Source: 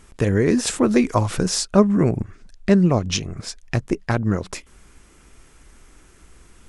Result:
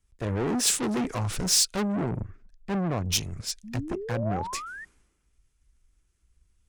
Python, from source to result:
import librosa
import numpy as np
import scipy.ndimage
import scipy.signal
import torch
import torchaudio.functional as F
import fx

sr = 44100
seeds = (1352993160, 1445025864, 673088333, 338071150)

y = fx.tube_stage(x, sr, drive_db=26.0, bias=0.4)
y = fx.spec_paint(y, sr, seeds[0], shape='rise', start_s=3.63, length_s=1.22, low_hz=200.0, high_hz=1900.0, level_db=-33.0)
y = fx.band_widen(y, sr, depth_pct=100)